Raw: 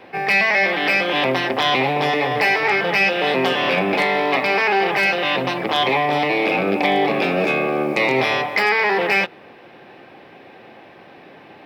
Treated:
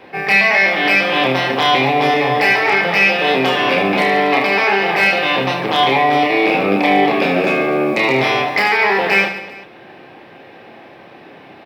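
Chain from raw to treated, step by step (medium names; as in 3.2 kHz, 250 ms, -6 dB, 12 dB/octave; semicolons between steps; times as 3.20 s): reverse bouncing-ball echo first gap 30 ms, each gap 1.5×, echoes 5; trim +1.5 dB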